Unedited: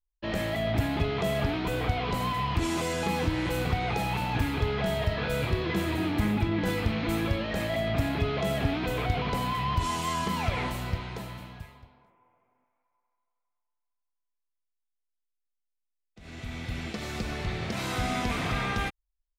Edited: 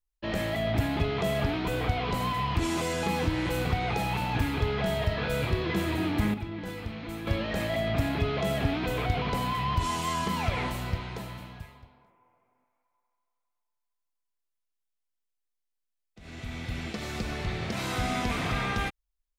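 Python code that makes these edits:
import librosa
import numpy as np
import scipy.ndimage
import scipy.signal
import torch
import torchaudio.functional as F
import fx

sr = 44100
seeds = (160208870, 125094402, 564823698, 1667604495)

y = fx.edit(x, sr, fx.clip_gain(start_s=6.34, length_s=0.93, db=-9.0), tone=tone)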